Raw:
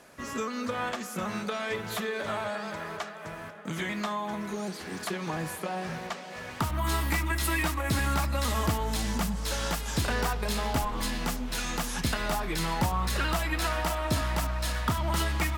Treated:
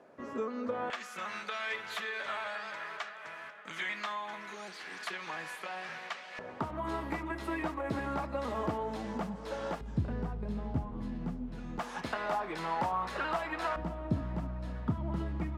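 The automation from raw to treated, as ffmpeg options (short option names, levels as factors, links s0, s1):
-af "asetnsamples=n=441:p=0,asendcmd='0.9 bandpass f 2100;6.39 bandpass f 490;9.81 bandpass f 140;11.79 bandpass f 800;13.76 bandpass f 190',bandpass=f=460:t=q:w=0.87:csg=0"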